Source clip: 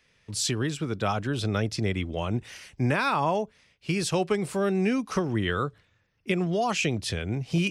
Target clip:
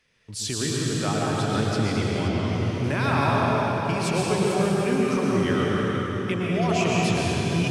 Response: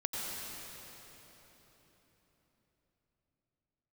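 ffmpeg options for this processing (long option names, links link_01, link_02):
-filter_complex "[1:a]atrim=start_sample=2205,asetrate=35280,aresample=44100[link_01];[0:a][link_01]afir=irnorm=-1:irlink=0,asettb=1/sr,asplit=3[link_02][link_03][link_04];[link_02]atrim=end=2.284[link_05];[link_03]atrim=start=2.28:end=2.84,asetpts=PTS-STARTPTS,afade=type=in:duration=0.004:curve=qsin,afade=type=out:start_time=0.556:duration=0.004:curve=qsin,acrossover=split=6300[link_06][link_07];[link_07]acompressor=threshold=-57dB:ratio=4:attack=1:release=60[link_08];[link_06][link_08]amix=inputs=2:normalize=0[link_09];[link_04]atrim=start=2.836[link_10];[link_05][link_09]acrossfade=duration=0.004:curve1=hsin:curve2=qsin[link_11];[link_11][link_10]acrossfade=duration=0.004:curve1=qsin:curve2=hsin,volume=-2.5dB"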